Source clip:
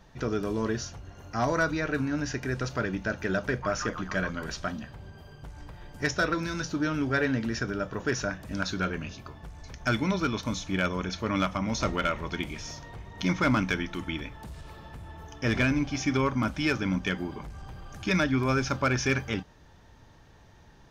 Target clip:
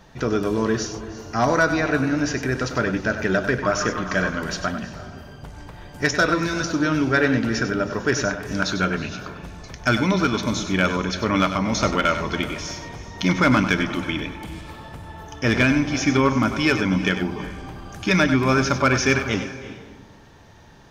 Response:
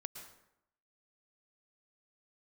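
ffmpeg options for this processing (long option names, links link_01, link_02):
-filter_complex "[0:a]lowshelf=frequency=75:gain=-7,asplit=2[link_01][link_02];[1:a]atrim=start_sample=2205,asetrate=22491,aresample=44100,adelay=97[link_03];[link_02][link_03]afir=irnorm=-1:irlink=0,volume=-9dB[link_04];[link_01][link_04]amix=inputs=2:normalize=0,volume=7.5dB"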